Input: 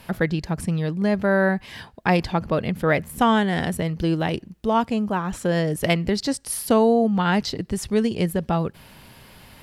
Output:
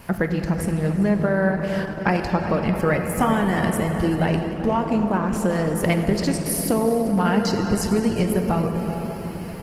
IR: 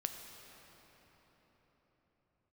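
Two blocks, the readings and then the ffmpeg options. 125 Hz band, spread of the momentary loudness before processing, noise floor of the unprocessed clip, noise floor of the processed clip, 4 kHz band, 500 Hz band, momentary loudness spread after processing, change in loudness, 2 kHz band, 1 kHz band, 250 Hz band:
+2.5 dB, 8 LU, -49 dBFS, -31 dBFS, -3.0 dB, 0.0 dB, 4 LU, +0.5 dB, -0.5 dB, -0.5 dB, +2.0 dB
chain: -filter_complex "[0:a]equalizer=f=3.6k:t=o:w=0.32:g=-12.5,acompressor=threshold=-23dB:ratio=4,asplit=2[a][b];[b]adelay=384.8,volume=-11dB,highshelf=f=4k:g=-8.66[c];[a][c]amix=inputs=2:normalize=0[d];[1:a]atrim=start_sample=2205[e];[d][e]afir=irnorm=-1:irlink=0,volume=6dB" -ar 48000 -c:a libopus -b:a 16k

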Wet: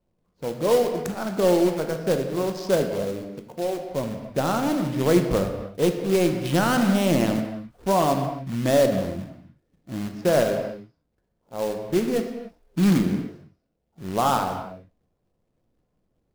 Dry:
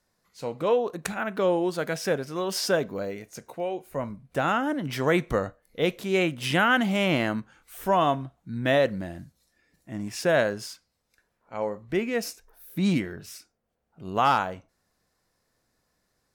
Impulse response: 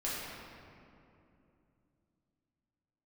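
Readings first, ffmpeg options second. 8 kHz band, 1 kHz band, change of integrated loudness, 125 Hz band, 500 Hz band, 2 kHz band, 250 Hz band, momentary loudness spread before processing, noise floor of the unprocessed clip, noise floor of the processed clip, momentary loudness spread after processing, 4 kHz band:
+3.5 dB, +0.5 dB, +3.0 dB, +5.5 dB, +4.0 dB, -5.0 dB, +5.5 dB, 16 LU, -76 dBFS, -74 dBFS, 14 LU, -1.0 dB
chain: -filter_complex "[0:a]adynamicsmooth=sensitivity=3:basefreq=920,equalizer=f=2k:t=o:w=1.7:g=-13,acrusher=bits=3:mode=log:mix=0:aa=0.000001,asplit=2[a][b];[1:a]atrim=start_sample=2205,afade=t=out:st=0.35:d=0.01,atrim=end_sample=15876[c];[b][c]afir=irnorm=-1:irlink=0,volume=-6.5dB[d];[a][d]amix=inputs=2:normalize=0,volume=2dB"

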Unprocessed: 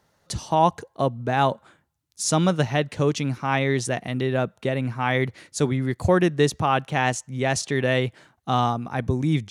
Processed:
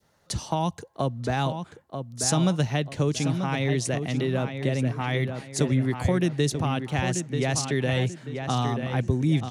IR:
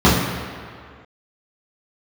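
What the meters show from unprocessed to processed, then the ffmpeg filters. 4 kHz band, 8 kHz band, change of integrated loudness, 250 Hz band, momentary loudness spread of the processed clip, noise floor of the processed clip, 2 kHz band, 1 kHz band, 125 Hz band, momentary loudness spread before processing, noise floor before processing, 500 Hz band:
-1.5 dB, 0.0 dB, -3.0 dB, -1.0 dB, 7 LU, -60 dBFS, -5.0 dB, -7.5 dB, +0.5 dB, 6 LU, -68 dBFS, -5.0 dB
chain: -filter_complex "[0:a]acrossover=split=240|3000[a][b][c];[b]acompressor=threshold=-25dB:ratio=6[d];[a][d][c]amix=inputs=3:normalize=0,asplit=2[e][f];[f]adelay=937,lowpass=f=3.5k:p=1,volume=-7dB,asplit=2[g][h];[h]adelay=937,lowpass=f=3.5k:p=1,volume=0.36,asplit=2[i][j];[j]adelay=937,lowpass=f=3.5k:p=1,volume=0.36,asplit=2[k][l];[l]adelay=937,lowpass=f=3.5k:p=1,volume=0.36[m];[e][g][i][k][m]amix=inputs=5:normalize=0,adynamicequalizer=threshold=0.01:dfrequency=1200:dqfactor=0.87:tfrequency=1200:tqfactor=0.87:attack=5:release=100:ratio=0.375:range=2:mode=cutabove:tftype=bell"

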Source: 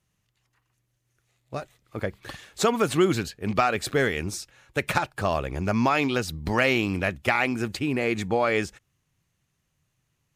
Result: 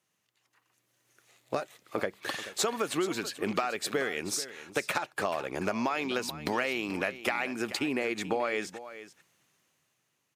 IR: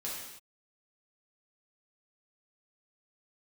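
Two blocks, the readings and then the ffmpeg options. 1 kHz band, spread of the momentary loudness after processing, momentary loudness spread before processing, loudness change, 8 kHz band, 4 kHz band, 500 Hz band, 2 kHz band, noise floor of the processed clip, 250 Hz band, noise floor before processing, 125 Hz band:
-6.5 dB, 6 LU, 14 LU, -6.5 dB, 0.0 dB, -3.0 dB, -6.0 dB, -6.0 dB, -78 dBFS, -7.5 dB, -75 dBFS, -14.5 dB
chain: -filter_complex "[0:a]dynaudnorm=f=110:g=17:m=11.5dB,highpass=290,acompressor=threshold=-28dB:ratio=6,asplit=2[a][b];[b]aecho=0:1:434:0.2[c];[a][c]amix=inputs=2:normalize=0"

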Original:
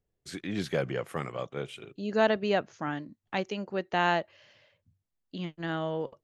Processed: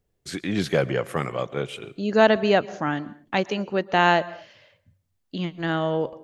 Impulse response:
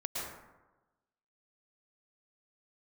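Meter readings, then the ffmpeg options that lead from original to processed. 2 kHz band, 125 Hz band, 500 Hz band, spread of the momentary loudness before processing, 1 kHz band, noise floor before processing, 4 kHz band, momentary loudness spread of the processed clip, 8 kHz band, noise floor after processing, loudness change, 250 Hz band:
+7.5 dB, +7.5 dB, +7.5 dB, 13 LU, +7.5 dB, -83 dBFS, +7.5 dB, 14 LU, n/a, -74 dBFS, +7.5 dB, +7.5 dB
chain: -filter_complex "[0:a]asplit=2[a][b];[1:a]atrim=start_sample=2205,afade=t=out:st=0.31:d=0.01,atrim=end_sample=14112[c];[b][c]afir=irnorm=-1:irlink=0,volume=-20dB[d];[a][d]amix=inputs=2:normalize=0,volume=7dB"

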